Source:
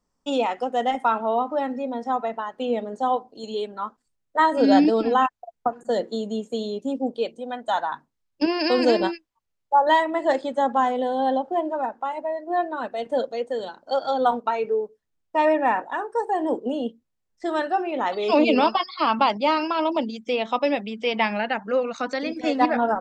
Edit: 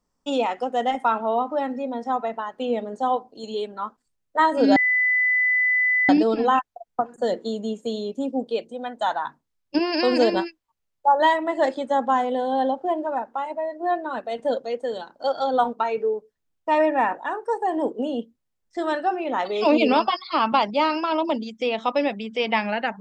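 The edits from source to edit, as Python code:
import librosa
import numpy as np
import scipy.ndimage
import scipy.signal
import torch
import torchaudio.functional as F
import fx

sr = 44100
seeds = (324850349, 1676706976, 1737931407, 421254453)

y = fx.edit(x, sr, fx.insert_tone(at_s=4.76, length_s=1.33, hz=2000.0, db=-17.0), tone=tone)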